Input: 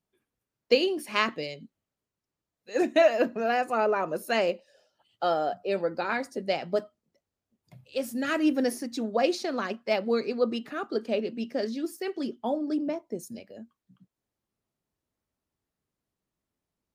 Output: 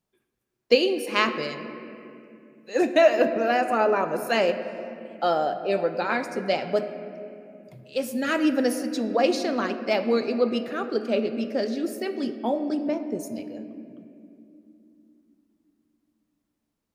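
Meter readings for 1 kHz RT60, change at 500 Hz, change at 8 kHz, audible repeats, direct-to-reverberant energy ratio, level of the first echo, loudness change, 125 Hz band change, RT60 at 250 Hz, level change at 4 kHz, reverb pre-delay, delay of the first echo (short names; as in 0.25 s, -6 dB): 2.2 s, +3.5 dB, +3.0 dB, none, 8.5 dB, none, +3.5 dB, +4.0 dB, 4.2 s, +3.5 dB, 4 ms, none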